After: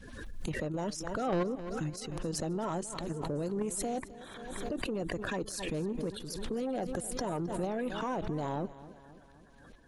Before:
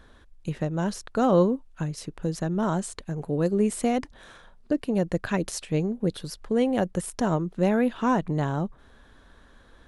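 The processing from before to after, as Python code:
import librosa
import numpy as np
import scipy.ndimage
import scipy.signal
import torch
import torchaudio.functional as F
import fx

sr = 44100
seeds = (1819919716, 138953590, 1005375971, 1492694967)

y = fx.spec_quant(x, sr, step_db=30)
y = fx.level_steps(y, sr, step_db=10)
y = 10.0 ** (-24.5 / 20.0) * np.tanh(y / 10.0 ** (-24.5 / 20.0))
y = fx.echo_feedback(y, sr, ms=264, feedback_pct=56, wet_db=-17)
y = fx.pre_swell(y, sr, db_per_s=36.0)
y = F.gain(torch.from_numpy(y), -2.0).numpy()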